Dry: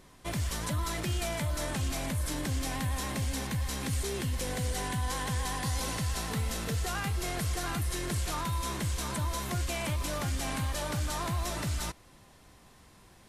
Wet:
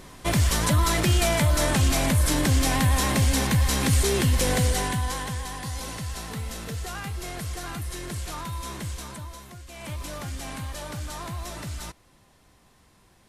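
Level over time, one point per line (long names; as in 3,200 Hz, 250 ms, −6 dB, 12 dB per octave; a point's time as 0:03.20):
0:04.57 +11 dB
0:05.47 −1 dB
0:08.90 −1 dB
0:09.64 −12.5 dB
0:09.92 −2 dB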